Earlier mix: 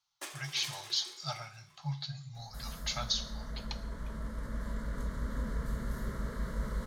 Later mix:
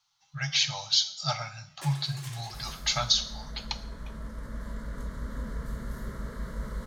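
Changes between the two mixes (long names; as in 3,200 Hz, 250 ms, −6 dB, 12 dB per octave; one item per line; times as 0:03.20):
speech +8.5 dB
first sound: entry +1.60 s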